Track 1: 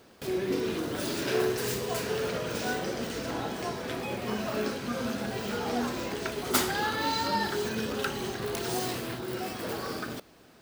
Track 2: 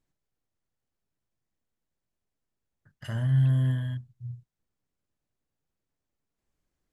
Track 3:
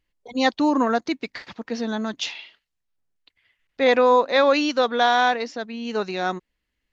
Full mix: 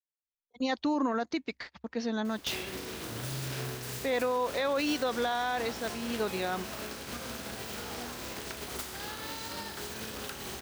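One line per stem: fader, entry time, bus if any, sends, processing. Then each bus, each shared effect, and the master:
+2.5 dB, 2.25 s, no send, spectral contrast lowered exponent 0.58; compressor 10:1, threshold -39 dBFS, peak gain reduction 19 dB
-6.5 dB, 0.00 s, no send, compressor, threshold -26 dBFS, peak gain reduction 7 dB; band-pass 190 Hz, Q 2
-5.5 dB, 0.25 s, no send, dry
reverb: off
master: gate -43 dBFS, range -31 dB; bell 66 Hz +11.5 dB 0.28 oct; limiter -21 dBFS, peak gain reduction 9 dB

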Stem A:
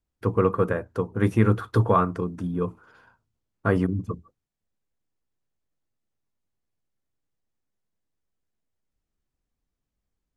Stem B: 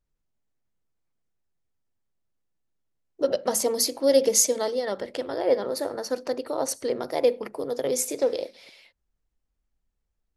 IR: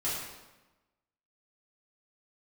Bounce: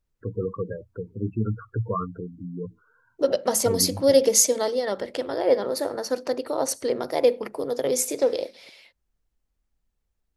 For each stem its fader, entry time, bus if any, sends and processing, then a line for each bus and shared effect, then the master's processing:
-6.0 dB, 0.00 s, no send, spectral gate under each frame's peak -10 dB strong; bell 800 Hz -13.5 dB 0.26 oct
+2.0 dB, 0.00 s, no send, dry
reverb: off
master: dry

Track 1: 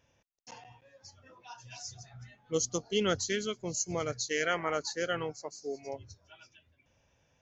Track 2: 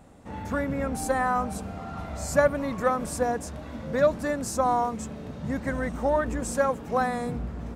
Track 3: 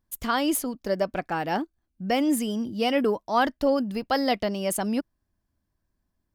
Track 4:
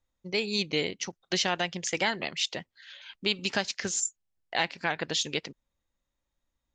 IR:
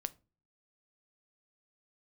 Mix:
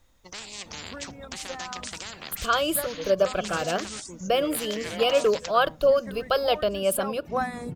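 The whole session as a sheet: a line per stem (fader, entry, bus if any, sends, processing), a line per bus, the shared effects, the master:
-4.0 dB, 0.45 s, no send, Bessel low-pass 4100 Hz; endless phaser +0.48 Hz
-1.0 dB, 0.40 s, no send, reverb removal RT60 0.99 s; auto duck -11 dB, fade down 0.90 s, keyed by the fourth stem
+1.5 dB, 2.20 s, send -6 dB, fixed phaser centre 1300 Hz, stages 8
-5.0 dB, 0.00 s, no send, spectral compressor 10:1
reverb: on, pre-delay 7 ms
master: dry

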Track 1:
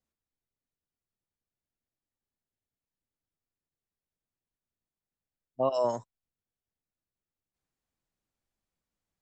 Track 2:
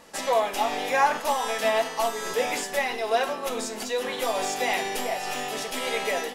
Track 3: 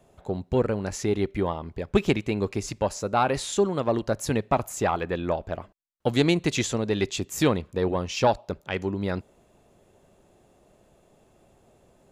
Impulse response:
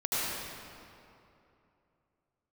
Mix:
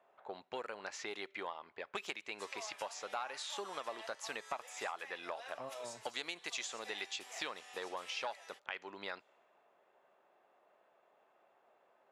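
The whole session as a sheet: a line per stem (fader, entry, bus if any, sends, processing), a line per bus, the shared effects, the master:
-19.5 dB, 0.00 s, no bus, no send, dry
-16.0 dB, 2.25 s, bus A, no send, LPF 11000 Hz 24 dB/oct
+0.5 dB, 0.00 s, bus A, no send, low-pass opened by the level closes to 1600 Hz, open at -18.5 dBFS
bus A: 0.0 dB, HPF 1000 Hz 12 dB/oct; compressor 4:1, threshold -40 dBFS, peak gain reduction 16 dB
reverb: off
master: dry

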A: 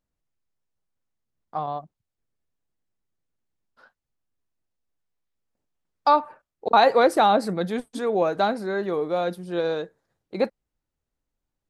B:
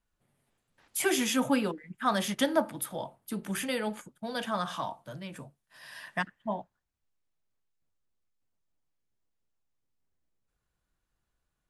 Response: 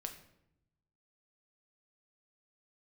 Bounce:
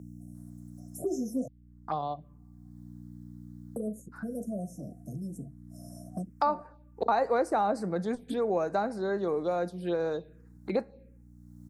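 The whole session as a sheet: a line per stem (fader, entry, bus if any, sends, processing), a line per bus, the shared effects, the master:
-5.5 dB, 0.35 s, send -10.5 dB, dry
-4.0 dB, 0.00 s, muted 1.48–3.76, no send, FFT band-reject 740–5200 Hz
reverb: on, RT60 0.80 s, pre-delay 6 ms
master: envelope phaser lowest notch 450 Hz, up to 3300 Hz, full sweep at -26 dBFS; hum 60 Hz, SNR 28 dB; three-band squash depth 70%

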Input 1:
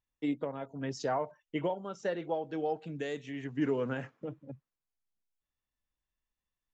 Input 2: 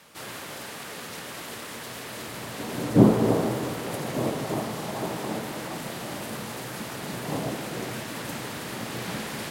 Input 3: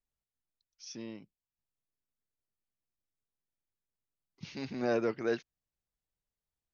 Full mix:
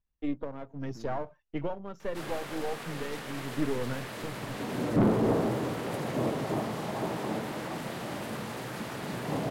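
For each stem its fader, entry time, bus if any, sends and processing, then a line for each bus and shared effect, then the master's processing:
-0.5 dB, 0.00 s, no send, half-wave gain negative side -7 dB; low shelf 230 Hz +8 dB
-1.0 dB, 2.00 s, no send, soft clip -18 dBFS, distortion -8 dB
-12.0 dB, 0.00 s, no send, tilt -4 dB/oct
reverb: off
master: high shelf 4000 Hz -8.5 dB

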